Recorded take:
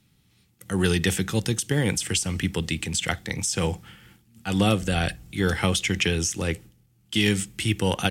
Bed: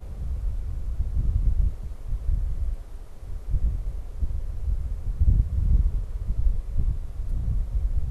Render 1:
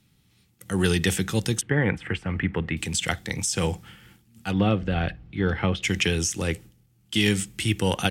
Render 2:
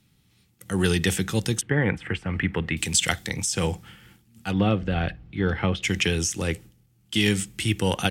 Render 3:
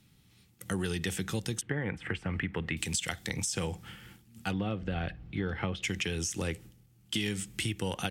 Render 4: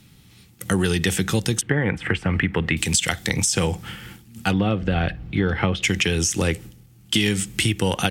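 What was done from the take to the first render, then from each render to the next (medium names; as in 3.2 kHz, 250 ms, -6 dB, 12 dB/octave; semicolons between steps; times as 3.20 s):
1.61–2.77 s: FFT filter 310 Hz 0 dB, 1.9 kHz +5 dB, 6.1 kHz -29 dB; 4.51–5.83 s: distance through air 350 m
2.33–3.29 s: treble shelf 2.6 kHz +7 dB
compression, threshold -30 dBFS, peak gain reduction 13 dB
trim +12 dB; peak limiter -3 dBFS, peak gain reduction 2 dB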